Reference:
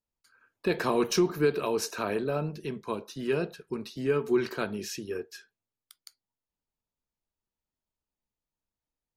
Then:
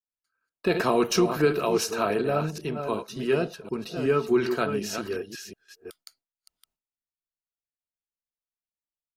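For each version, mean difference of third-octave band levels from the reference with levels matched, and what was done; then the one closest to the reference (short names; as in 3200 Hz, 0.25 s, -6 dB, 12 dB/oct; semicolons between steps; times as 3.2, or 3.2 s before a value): 3.5 dB: reverse delay 0.369 s, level -7.5 dB; gate with hold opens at -49 dBFS; small resonant body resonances 680/1300/2800 Hz, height 7 dB; gain +3 dB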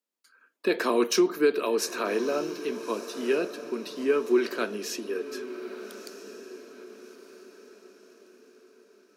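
6.5 dB: steep high-pass 230 Hz 36 dB/oct; bell 820 Hz -6.5 dB 0.36 oct; on a send: diffused feedback echo 1.262 s, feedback 41%, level -12.5 dB; on the sum: gain +3 dB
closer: first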